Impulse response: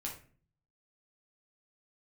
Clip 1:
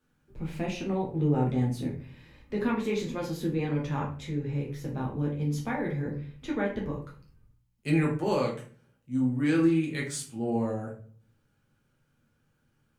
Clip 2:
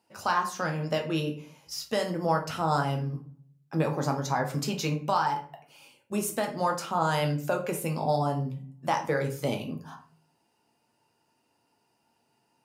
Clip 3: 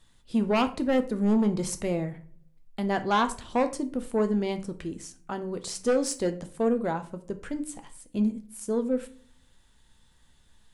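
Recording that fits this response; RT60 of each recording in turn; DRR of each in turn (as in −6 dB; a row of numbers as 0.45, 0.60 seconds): 1; 0.45, 0.45, 0.45 seconds; −2.5, 2.5, 8.0 decibels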